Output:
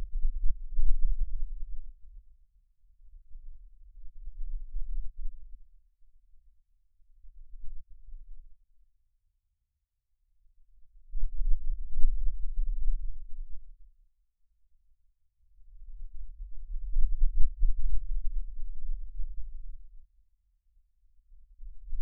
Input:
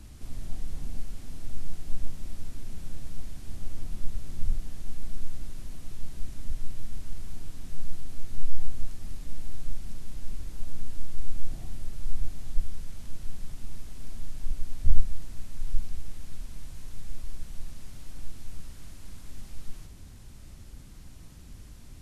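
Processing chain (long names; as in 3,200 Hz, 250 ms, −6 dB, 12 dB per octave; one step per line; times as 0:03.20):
extreme stretch with random phases 31×, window 0.05 s, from 0:12.73
every bin expanded away from the loudest bin 2.5 to 1
level +5.5 dB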